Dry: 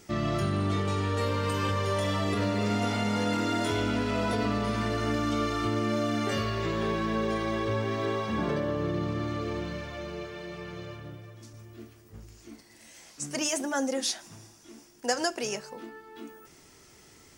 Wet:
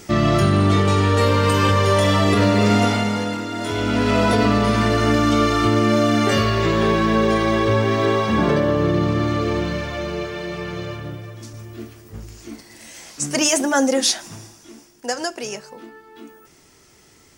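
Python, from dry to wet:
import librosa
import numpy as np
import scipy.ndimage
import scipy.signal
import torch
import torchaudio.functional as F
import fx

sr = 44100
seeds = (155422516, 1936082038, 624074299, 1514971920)

y = fx.gain(x, sr, db=fx.line((2.8, 12.0), (3.49, 0.0), (4.09, 11.5), (14.34, 11.5), (15.06, 3.0)))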